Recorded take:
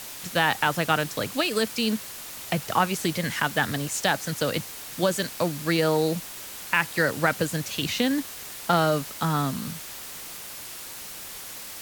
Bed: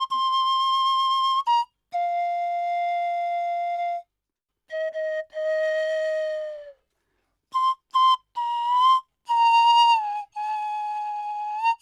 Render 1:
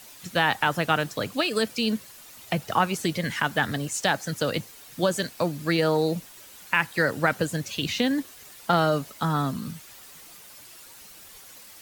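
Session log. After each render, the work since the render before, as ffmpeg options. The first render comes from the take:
-af "afftdn=nr=10:nf=-39"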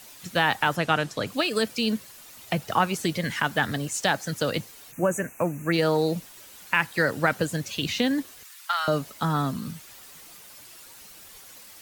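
-filter_complex "[0:a]asettb=1/sr,asplit=3[a][b][c];[a]atrim=end=0.764[d];[b]atrim=start=0.76:end=1.27,asetpts=PTS-STARTPTS,afade=t=in:d=0.004:c=qsin,afade=t=out:st=0.506:d=0.004:c=qsin,lowpass=9.9k[e];[c]atrim=start=1.266[f];[d][e]acrossfade=d=0.004:c1=hsin:c2=qsin[g];[g][f]acrossfade=d=0.004:c1=qsin:c2=hsin,asplit=3[h][i][j];[h]afade=t=out:st=4.91:d=0.02[k];[i]asuperstop=centerf=4100:order=20:qfactor=1.3,afade=t=in:st=4.91:d=0.02,afade=t=out:st=5.72:d=0.02[l];[j]afade=t=in:st=5.72:d=0.02[m];[k][l][m]amix=inputs=3:normalize=0,asettb=1/sr,asplit=3[n][o][p];[n]atrim=end=8.434[q];[o]atrim=start=8.43:end=8.88,asetpts=PTS-STARTPTS,afade=t=in:d=0.004:c=qsin,afade=t=out:st=0.446:d=0.004:c=qsin,highpass=f=1.1k:w=0.5412,highpass=f=1.1k:w=1.3066[r];[p]atrim=start=8.876[s];[q][r]acrossfade=d=0.004:c1=hsin:c2=qsin[t];[t][s]acrossfade=d=0.004:c1=qsin:c2=hsin"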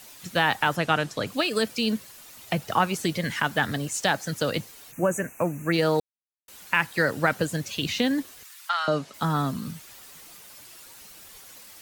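-filter_complex "[0:a]asettb=1/sr,asplit=3[a][b][c];[a]atrim=end=8.694[d];[b]atrim=start=8.69:end=9.14,asetpts=PTS-STARTPTS,afade=t=in:d=0.004:c=qsin,afade=t=out:st=0.446:d=0.004:c=qsin,highpass=140,lowpass=6.6k[e];[c]atrim=start=9.136[f];[d][e]acrossfade=d=0.004:c1=hsin:c2=qsin[g];[g][f]acrossfade=d=0.004:c1=qsin:c2=hsin,asplit=3[h][i][j];[h]atrim=end=6,asetpts=PTS-STARTPTS,afade=t=out:st=5.996:d=0.004:c=hsin[k];[i]atrim=start=6:end=6.48,asetpts=PTS-STARTPTS,volume=0[l];[j]atrim=start=6.48,asetpts=PTS-STARTPTS,afade=t=in:d=0.004:c=hsin[m];[k][l][m]concat=n=3:v=0:a=1"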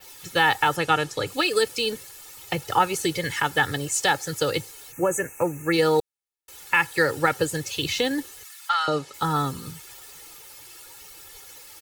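-af "aecho=1:1:2.3:0.75,adynamicequalizer=threshold=0.00708:dfrequency=9200:dqfactor=0.89:tfrequency=9200:tqfactor=0.89:attack=5:release=100:ratio=0.375:range=2:mode=boostabove:tftype=bell"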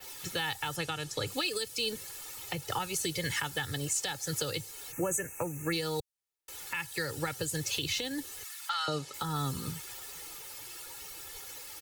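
-filter_complex "[0:a]acrossover=split=150|3000[a][b][c];[b]acompressor=threshold=-32dB:ratio=4[d];[a][d][c]amix=inputs=3:normalize=0,alimiter=limit=-20.5dB:level=0:latency=1:release=330"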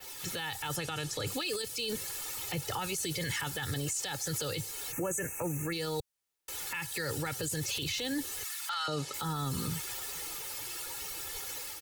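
-af "alimiter=level_in=6.5dB:limit=-24dB:level=0:latency=1:release=15,volume=-6.5dB,dynaudnorm=f=160:g=3:m=5dB"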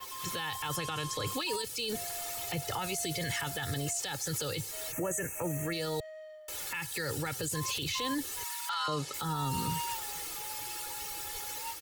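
-filter_complex "[1:a]volume=-21dB[a];[0:a][a]amix=inputs=2:normalize=0"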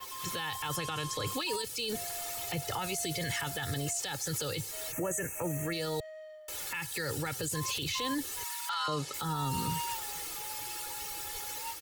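-af anull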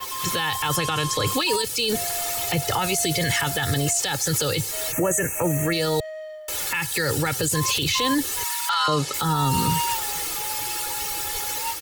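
-af "volume=11.5dB"

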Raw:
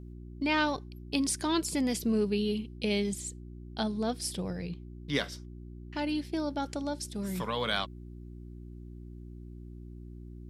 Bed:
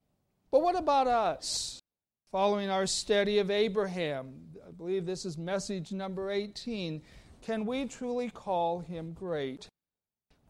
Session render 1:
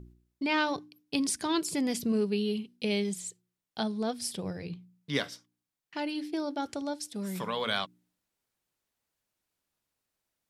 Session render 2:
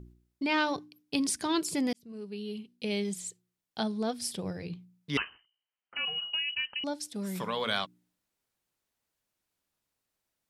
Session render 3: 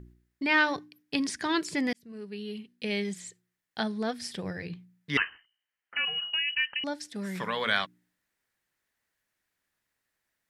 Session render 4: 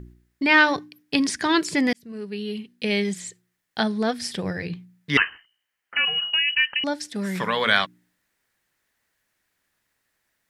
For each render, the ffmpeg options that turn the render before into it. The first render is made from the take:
-af "bandreject=f=60:t=h:w=4,bandreject=f=120:t=h:w=4,bandreject=f=180:t=h:w=4,bandreject=f=240:t=h:w=4,bandreject=f=300:t=h:w=4,bandreject=f=360:t=h:w=4"
-filter_complex "[0:a]asettb=1/sr,asplit=3[a][b][c];[a]atrim=end=5.174[d];[b]atrim=start=5.17:end=6.84,asetpts=PTS-STARTPTS,afade=t=in:d=0.004:c=qsin,afade=t=out:st=1.666:d=0.004:c=qsin,lowpass=f=2.7k:t=q:w=0.5098,lowpass=f=2.7k:t=q:w=0.6013,lowpass=f=2.7k:t=q:w=0.9,lowpass=f=2.7k:t=q:w=2.563,afreqshift=-3200[e];[c]atrim=start=6.836[f];[d][e]acrossfade=d=0.004:c1=hsin:c2=qsin[g];[g][f]acrossfade=d=0.004:c1=qsin:c2=hsin,asplit=2[h][i];[h]atrim=end=1.93,asetpts=PTS-STARTPTS,afade=t=out:st=1.926:d=0.004:c=hsin[j];[i]atrim=start=1.93,asetpts=PTS-STARTPTS,afade=t=in:d=1.33[k];[j][k]concat=n=2:v=0:a=1"
-filter_complex "[0:a]acrossover=split=7400[a][b];[b]acompressor=threshold=-56dB:ratio=4:attack=1:release=60[c];[a][c]amix=inputs=2:normalize=0,equalizer=f=1.8k:t=o:w=0.61:g=12"
-af "volume=7.5dB"

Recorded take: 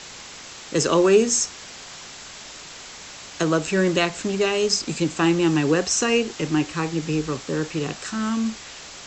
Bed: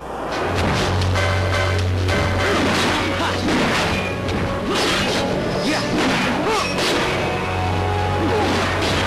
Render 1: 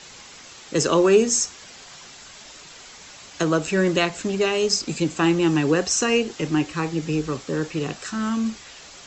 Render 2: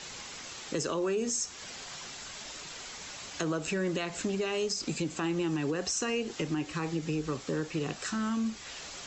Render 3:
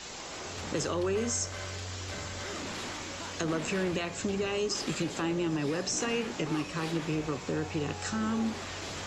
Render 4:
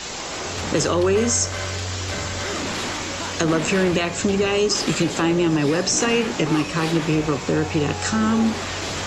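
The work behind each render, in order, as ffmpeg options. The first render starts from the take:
-af "afftdn=nr=6:nf=-40"
-af "alimiter=limit=-15.5dB:level=0:latency=1:release=96,acompressor=threshold=-34dB:ratio=2"
-filter_complex "[1:a]volume=-21.5dB[a];[0:a][a]amix=inputs=2:normalize=0"
-af "volume=11.5dB"

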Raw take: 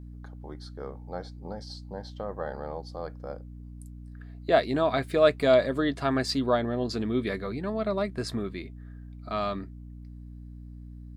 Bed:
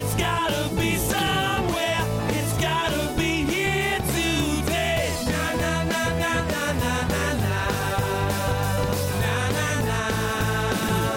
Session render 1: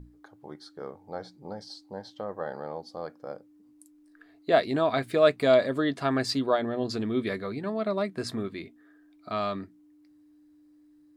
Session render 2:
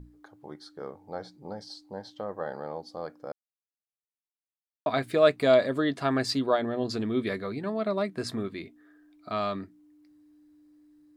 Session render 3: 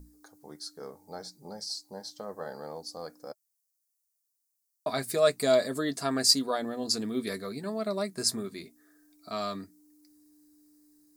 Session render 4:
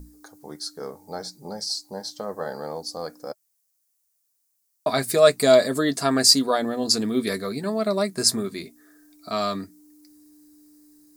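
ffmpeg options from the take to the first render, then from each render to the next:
-af "bandreject=f=60:t=h:w=6,bandreject=f=120:t=h:w=6,bandreject=f=180:t=h:w=6,bandreject=f=240:t=h:w=6"
-filter_complex "[0:a]asplit=3[a][b][c];[a]atrim=end=3.32,asetpts=PTS-STARTPTS,afade=t=out:st=3.316:d=0.004:c=hsin[d];[b]atrim=start=3.32:end=4.86,asetpts=PTS-STARTPTS,volume=0[e];[c]atrim=start=4.86,asetpts=PTS-STARTPTS,afade=t=in:d=0.004:c=hsin[f];[d][e][f]concat=n=3:v=0:a=1"
-af "aexciter=amount=10.5:drive=2.6:freq=4.6k,flanger=delay=4:depth=1:regen=-50:speed=0.3:shape=triangular"
-af "volume=8dB,alimiter=limit=-1dB:level=0:latency=1"

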